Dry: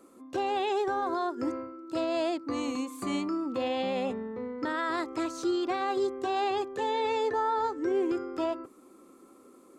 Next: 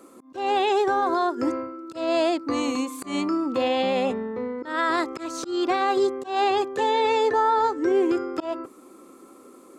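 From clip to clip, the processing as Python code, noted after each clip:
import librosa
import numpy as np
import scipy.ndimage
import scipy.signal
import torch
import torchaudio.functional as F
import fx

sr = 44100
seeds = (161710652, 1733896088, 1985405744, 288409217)

y = fx.low_shelf(x, sr, hz=190.0, db=-5.5)
y = fx.auto_swell(y, sr, attack_ms=173.0)
y = F.gain(torch.from_numpy(y), 8.0).numpy()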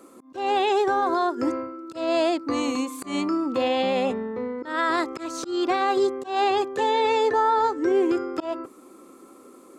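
y = x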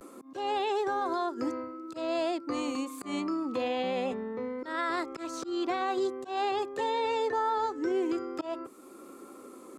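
y = fx.vibrato(x, sr, rate_hz=0.47, depth_cents=44.0)
y = fx.band_squash(y, sr, depth_pct=40)
y = F.gain(torch.from_numpy(y), -8.0).numpy()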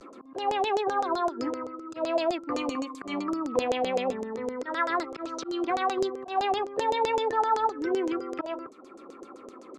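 y = fx.filter_lfo_lowpass(x, sr, shape='saw_down', hz=7.8, low_hz=470.0, high_hz=6900.0, q=3.4)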